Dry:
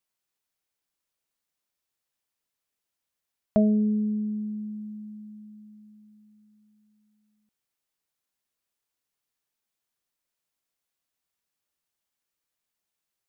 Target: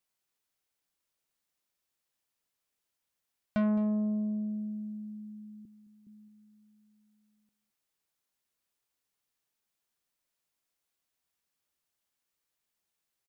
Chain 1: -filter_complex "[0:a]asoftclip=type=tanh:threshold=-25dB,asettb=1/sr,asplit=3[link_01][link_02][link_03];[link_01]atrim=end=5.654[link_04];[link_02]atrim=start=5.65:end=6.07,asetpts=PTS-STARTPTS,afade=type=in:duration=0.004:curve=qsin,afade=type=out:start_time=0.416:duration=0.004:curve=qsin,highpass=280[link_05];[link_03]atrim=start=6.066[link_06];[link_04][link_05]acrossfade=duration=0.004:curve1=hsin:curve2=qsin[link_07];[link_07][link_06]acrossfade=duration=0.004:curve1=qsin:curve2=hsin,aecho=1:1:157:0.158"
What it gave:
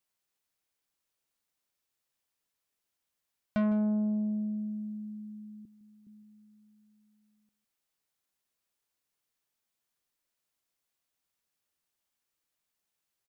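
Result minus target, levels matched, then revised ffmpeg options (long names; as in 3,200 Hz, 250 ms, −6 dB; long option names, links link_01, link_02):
echo 57 ms early
-filter_complex "[0:a]asoftclip=type=tanh:threshold=-25dB,asettb=1/sr,asplit=3[link_01][link_02][link_03];[link_01]atrim=end=5.654[link_04];[link_02]atrim=start=5.65:end=6.07,asetpts=PTS-STARTPTS,afade=type=in:duration=0.004:curve=qsin,afade=type=out:start_time=0.416:duration=0.004:curve=qsin,highpass=280[link_05];[link_03]atrim=start=6.066[link_06];[link_04][link_05]acrossfade=duration=0.004:curve1=hsin:curve2=qsin[link_07];[link_07][link_06]acrossfade=duration=0.004:curve1=qsin:curve2=hsin,aecho=1:1:214:0.158"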